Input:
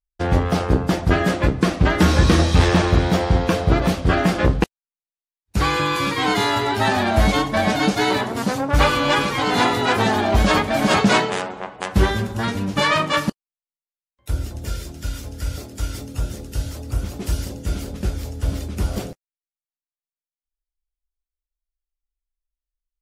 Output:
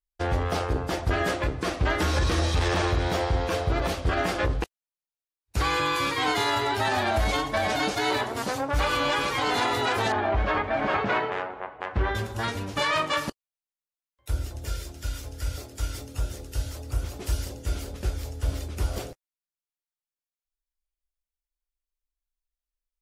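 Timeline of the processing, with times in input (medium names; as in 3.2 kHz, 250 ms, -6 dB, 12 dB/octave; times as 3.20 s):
10.12–12.15 s: Chebyshev low-pass 1.9 kHz
whole clip: peaking EQ 190 Hz -12.5 dB 0.88 oct; peak limiter -12 dBFS; trim -3.5 dB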